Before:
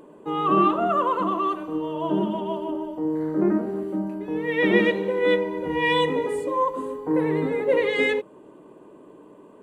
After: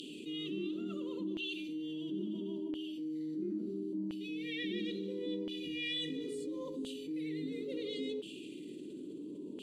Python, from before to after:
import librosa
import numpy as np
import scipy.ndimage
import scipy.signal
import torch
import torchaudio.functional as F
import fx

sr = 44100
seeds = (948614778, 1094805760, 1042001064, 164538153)

y = scipy.signal.sosfilt(scipy.signal.ellip(3, 1.0, 50, [310.0, 3900.0], 'bandstop', fs=sr, output='sos'), x)
y = fx.filter_lfo_bandpass(y, sr, shape='saw_down', hz=0.73, low_hz=880.0, high_hz=3000.0, q=6.1)
y = fx.env_flatten(y, sr, amount_pct=70)
y = y * librosa.db_to_amplitude(14.0)